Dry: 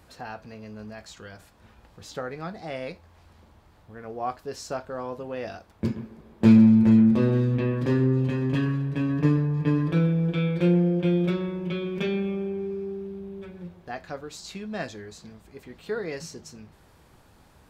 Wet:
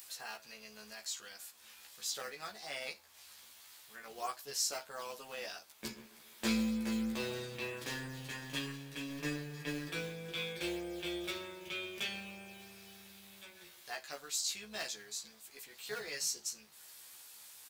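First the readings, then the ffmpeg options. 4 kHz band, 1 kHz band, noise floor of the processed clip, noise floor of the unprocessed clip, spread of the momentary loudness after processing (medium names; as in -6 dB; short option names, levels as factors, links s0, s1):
+3.0 dB, -9.5 dB, -59 dBFS, -56 dBFS, 18 LU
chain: -filter_complex "[0:a]aderivative,acrossover=split=1500[s0][s1];[s0]acrusher=samples=9:mix=1:aa=0.000001:lfo=1:lforange=9:lforate=3.2[s2];[s1]acompressor=mode=upward:threshold=0.00158:ratio=2.5[s3];[s2][s3]amix=inputs=2:normalize=0,tremolo=f=280:d=0.4,asplit=2[s4][s5];[s5]adelay=14,volume=0.794[s6];[s4][s6]amix=inputs=2:normalize=0,volume=2.66"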